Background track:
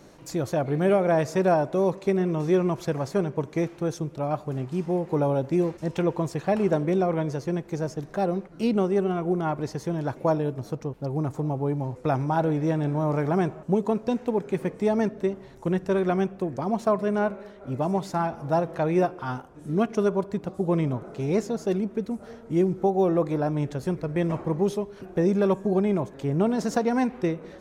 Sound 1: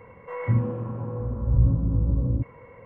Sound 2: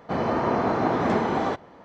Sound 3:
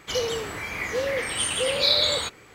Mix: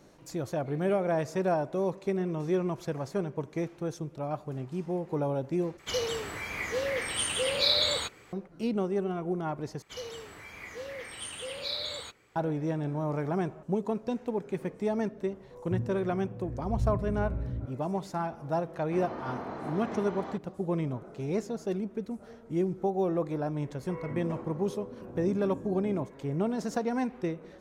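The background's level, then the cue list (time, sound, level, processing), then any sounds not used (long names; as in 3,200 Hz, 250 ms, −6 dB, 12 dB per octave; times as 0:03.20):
background track −6.5 dB
0:05.79: overwrite with 3 −4.5 dB
0:09.82: overwrite with 3 −14 dB
0:15.23: mix in 1 −10.5 dB + Gaussian smoothing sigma 11 samples
0:18.82: mix in 2 −15 dB
0:23.61: mix in 1 −10 dB + high-pass with resonance 290 Hz, resonance Q 1.5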